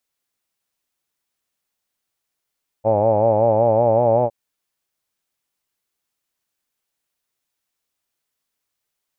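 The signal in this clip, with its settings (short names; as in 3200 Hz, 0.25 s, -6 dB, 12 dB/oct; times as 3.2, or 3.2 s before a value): formant-synthesis vowel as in hawed, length 1.46 s, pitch 106 Hz, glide +2 st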